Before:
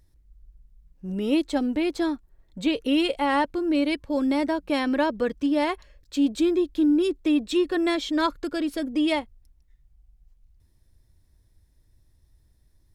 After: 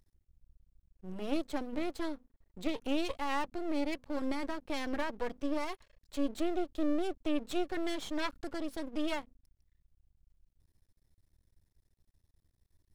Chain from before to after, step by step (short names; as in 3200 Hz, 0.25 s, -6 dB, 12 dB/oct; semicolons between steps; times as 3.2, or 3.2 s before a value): notches 50/100/150/200/250 Hz; half-wave rectifier; gain -6.5 dB